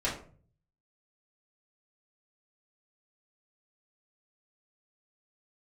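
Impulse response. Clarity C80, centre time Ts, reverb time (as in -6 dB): 12.0 dB, 28 ms, 0.45 s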